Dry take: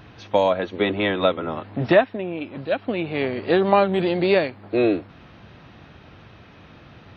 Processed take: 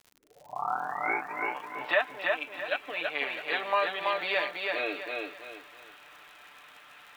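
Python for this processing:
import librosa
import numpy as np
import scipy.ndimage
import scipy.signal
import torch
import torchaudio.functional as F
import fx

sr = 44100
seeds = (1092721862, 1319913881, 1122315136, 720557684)

p1 = fx.tape_start_head(x, sr, length_s=1.85)
p2 = scipy.signal.sosfilt(scipy.signal.butter(2, 1100.0, 'highpass', fs=sr, output='sos'), p1)
p3 = p2 + 0.66 * np.pad(p2, (int(6.8 * sr / 1000.0), 0))[:len(p2)]
p4 = fx.rider(p3, sr, range_db=4, speed_s=0.5)
p5 = p3 + F.gain(torch.from_numpy(p4), -1.0).numpy()
p6 = scipy.signal.sosfilt(scipy.signal.butter(4, 3800.0, 'lowpass', fs=sr, output='sos'), p5)
p7 = fx.dmg_crackle(p6, sr, seeds[0], per_s=56.0, level_db=-34.0)
p8 = fx.echo_crushed(p7, sr, ms=330, feedback_pct=35, bits=9, wet_db=-3.0)
y = F.gain(torch.from_numpy(p8), -8.5).numpy()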